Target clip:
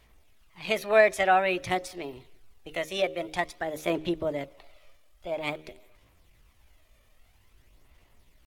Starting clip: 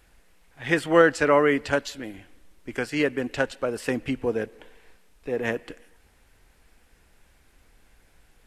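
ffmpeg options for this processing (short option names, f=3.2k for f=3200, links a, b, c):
-af "bandreject=f=60:t=h:w=6,bandreject=f=120:t=h:w=6,bandreject=f=180:t=h:w=6,bandreject=f=240:t=h:w=6,bandreject=f=300:t=h:w=6,bandreject=f=360:t=h:w=6,bandreject=f=420:t=h:w=6,asetrate=57191,aresample=44100,atempo=0.771105,aphaser=in_gain=1:out_gain=1:delay=1.7:decay=0.37:speed=0.5:type=sinusoidal,volume=-4.5dB"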